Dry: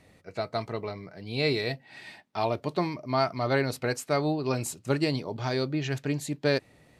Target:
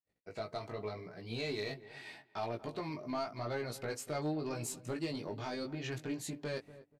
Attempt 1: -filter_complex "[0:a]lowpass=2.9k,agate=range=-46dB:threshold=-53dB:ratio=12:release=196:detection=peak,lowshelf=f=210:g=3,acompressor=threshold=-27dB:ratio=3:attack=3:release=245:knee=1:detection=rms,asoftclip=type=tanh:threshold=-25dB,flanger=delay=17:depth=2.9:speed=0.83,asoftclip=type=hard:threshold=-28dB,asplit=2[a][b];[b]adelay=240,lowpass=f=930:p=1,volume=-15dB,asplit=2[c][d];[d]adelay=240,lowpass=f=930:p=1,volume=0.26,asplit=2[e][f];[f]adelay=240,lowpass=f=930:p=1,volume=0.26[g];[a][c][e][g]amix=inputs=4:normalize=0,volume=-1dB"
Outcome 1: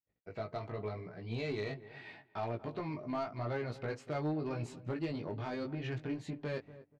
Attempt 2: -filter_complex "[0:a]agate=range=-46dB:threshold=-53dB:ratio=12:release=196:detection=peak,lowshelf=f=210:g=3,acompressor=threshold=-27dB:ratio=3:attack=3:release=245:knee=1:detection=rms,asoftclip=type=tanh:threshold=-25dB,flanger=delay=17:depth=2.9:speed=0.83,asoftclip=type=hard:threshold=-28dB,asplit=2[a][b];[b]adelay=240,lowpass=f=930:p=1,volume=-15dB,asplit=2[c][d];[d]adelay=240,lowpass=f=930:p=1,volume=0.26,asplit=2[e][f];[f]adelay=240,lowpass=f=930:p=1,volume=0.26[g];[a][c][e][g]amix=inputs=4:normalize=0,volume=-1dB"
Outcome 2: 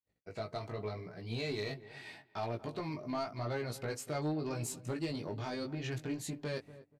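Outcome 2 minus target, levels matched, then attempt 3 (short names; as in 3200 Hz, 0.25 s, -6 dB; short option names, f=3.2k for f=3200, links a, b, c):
125 Hz band +3.0 dB
-filter_complex "[0:a]agate=range=-46dB:threshold=-53dB:ratio=12:release=196:detection=peak,lowshelf=f=210:g=3,acompressor=threshold=-27dB:ratio=3:attack=3:release=245:knee=1:detection=rms,equalizer=f=70:w=0.54:g=-6,asoftclip=type=tanh:threshold=-25dB,flanger=delay=17:depth=2.9:speed=0.83,asoftclip=type=hard:threshold=-28dB,asplit=2[a][b];[b]adelay=240,lowpass=f=930:p=1,volume=-15dB,asplit=2[c][d];[d]adelay=240,lowpass=f=930:p=1,volume=0.26,asplit=2[e][f];[f]adelay=240,lowpass=f=930:p=1,volume=0.26[g];[a][c][e][g]amix=inputs=4:normalize=0,volume=-1dB"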